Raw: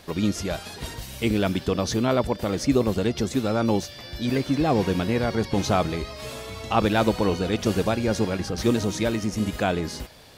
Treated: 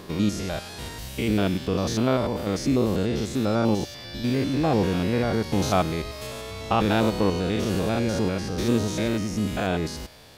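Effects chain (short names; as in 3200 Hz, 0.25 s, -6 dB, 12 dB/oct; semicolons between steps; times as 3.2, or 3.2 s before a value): stepped spectrum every 0.1 s; 5.33–6.27 high shelf 11000 Hz +10 dB; gain +1.5 dB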